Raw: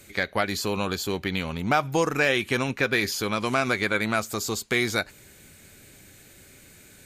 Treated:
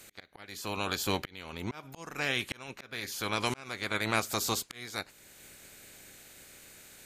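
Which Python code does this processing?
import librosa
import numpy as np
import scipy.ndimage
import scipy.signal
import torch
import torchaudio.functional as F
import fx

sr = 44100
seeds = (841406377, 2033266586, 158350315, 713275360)

y = fx.spec_clip(x, sr, under_db=13)
y = fx.auto_swell(y, sr, attack_ms=740.0)
y = y * 10.0 ** (-2.0 / 20.0)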